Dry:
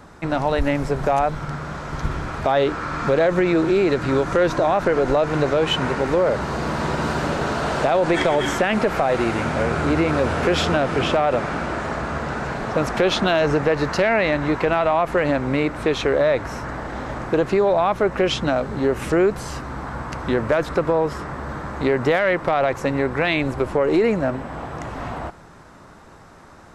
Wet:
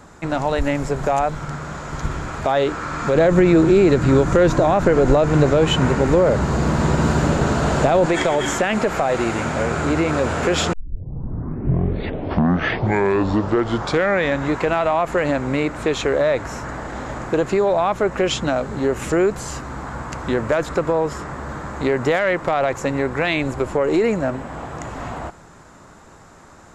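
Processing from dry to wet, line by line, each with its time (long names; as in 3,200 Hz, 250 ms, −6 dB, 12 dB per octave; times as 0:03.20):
0:03.15–0:08.06: low-shelf EQ 310 Hz +10.5 dB
0:10.73: tape start 3.83 s
whole clip: parametric band 7,100 Hz +11.5 dB 0.24 octaves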